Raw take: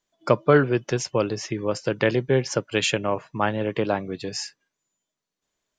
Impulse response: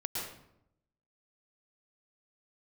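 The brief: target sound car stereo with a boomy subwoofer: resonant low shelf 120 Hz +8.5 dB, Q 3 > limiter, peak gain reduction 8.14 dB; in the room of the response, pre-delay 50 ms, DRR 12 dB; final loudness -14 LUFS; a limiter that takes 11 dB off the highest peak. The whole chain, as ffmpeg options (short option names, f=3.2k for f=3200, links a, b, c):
-filter_complex "[0:a]alimiter=limit=-15.5dB:level=0:latency=1,asplit=2[a][b];[1:a]atrim=start_sample=2205,adelay=50[c];[b][c]afir=irnorm=-1:irlink=0,volume=-15.5dB[d];[a][d]amix=inputs=2:normalize=0,lowshelf=f=120:t=q:w=3:g=8.5,volume=17dB,alimiter=limit=-4dB:level=0:latency=1"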